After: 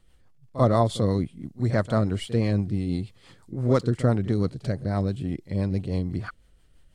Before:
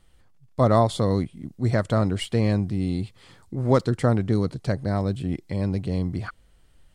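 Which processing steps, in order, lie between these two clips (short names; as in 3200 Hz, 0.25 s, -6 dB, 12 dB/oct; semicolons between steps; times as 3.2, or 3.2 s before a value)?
rotary speaker horn 6 Hz; pre-echo 41 ms -15 dB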